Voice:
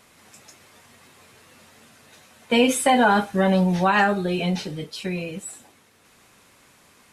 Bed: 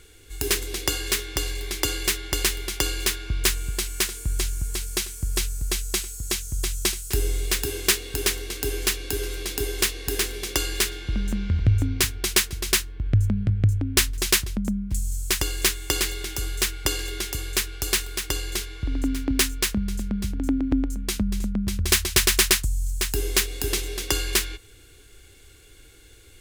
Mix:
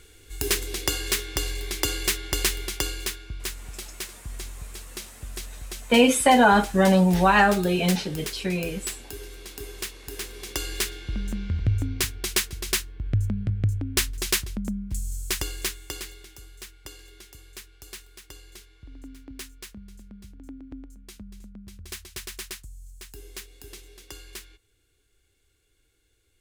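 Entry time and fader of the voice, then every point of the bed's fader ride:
3.40 s, +1.0 dB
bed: 0:02.64 −1 dB
0:03.46 −11 dB
0:10.11 −11 dB
0:10.72 −4 dB
0:15.38 −4 dB
0:16.47 −18.5 dB

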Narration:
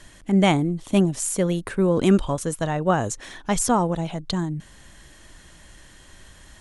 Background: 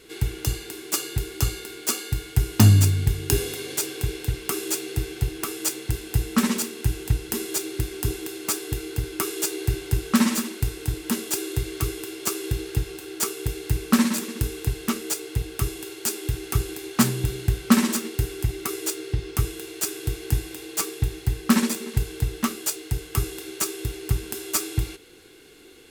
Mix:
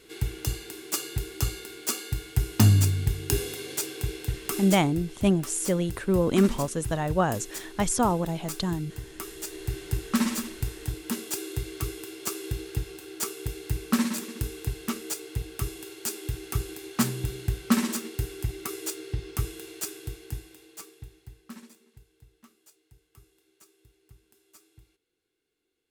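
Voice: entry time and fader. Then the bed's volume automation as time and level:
4.30 s, −3.5 dB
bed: 0:04.63 −4 dB
0:04.94 −11.5 dB
0:09.39 −11.5 dB
0:09.84 −5.5 dB
0:19.72 −5.5 dB
0:22.08 −31.5 dB

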